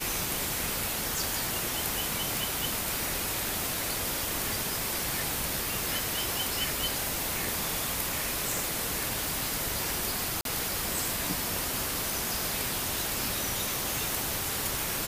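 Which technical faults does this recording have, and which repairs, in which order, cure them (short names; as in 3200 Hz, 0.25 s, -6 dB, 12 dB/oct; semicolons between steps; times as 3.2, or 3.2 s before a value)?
3.28 pop
10.41–10.45 gap 42 ms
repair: de-click; interpolate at 10.41, 42 ms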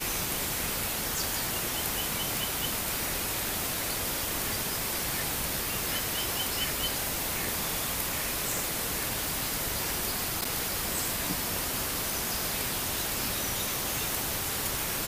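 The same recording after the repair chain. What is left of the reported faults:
none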